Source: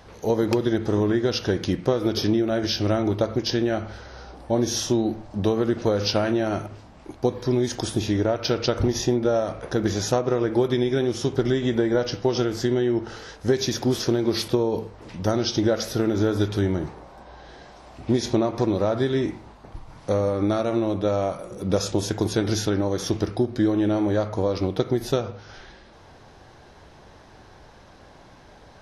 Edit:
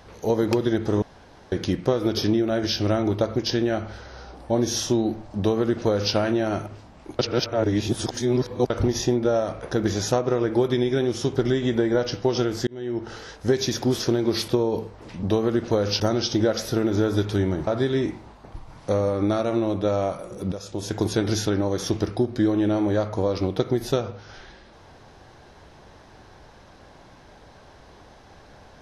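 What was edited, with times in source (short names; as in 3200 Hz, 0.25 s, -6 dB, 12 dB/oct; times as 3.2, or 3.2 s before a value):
1.02–1.52 room tone
5.37–6.14 copy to 15.23
7.19–8.7 reverse
12.67–13.13 fade in
16.9–18.87 cut
21.72–22.18 fade in quadratic, from -13 dB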